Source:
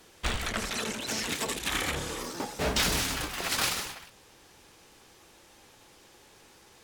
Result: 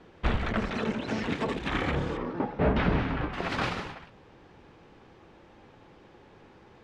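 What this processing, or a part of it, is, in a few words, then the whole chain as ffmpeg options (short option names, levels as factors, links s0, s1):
phone in a pocket: -filter_complex "[0:a]asettb=1/sr,asplit=3[s0][s1][s2];[s0]atrim=end=2.174[s3];[s1]atrim=start=2.17:end=3.33,asetpts=PTS-STARTPTS,afade=t=in:d=0.004:c=qsin,afade=t=out:st=1.156:d=0.004:c=qsin,lowpass=2600[s4];[s2]atrim=start=3.326[s5];[s3][s4]acrossfade=d=0.004:c1=hsin:c2=qsin[s6];[s6][s5]acrossfade=d=0.004:c1=qsin:c2=hsin,lowpass=3100,equalizer=f=160:t=o:w=1.9:g=4.5,highshelf=f=2000:g=-10,volume=1.68"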